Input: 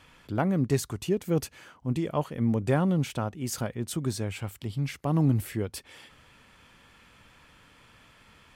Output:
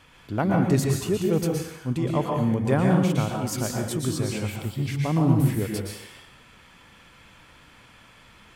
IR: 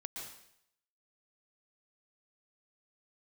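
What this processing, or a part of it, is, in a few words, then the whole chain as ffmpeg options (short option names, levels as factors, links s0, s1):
bathroom: -filter_complex "[1:a]atrim=start_sample=2205[s0];[0:a][s0]afir=irnorm=-1:irlink=0,volume=2.11"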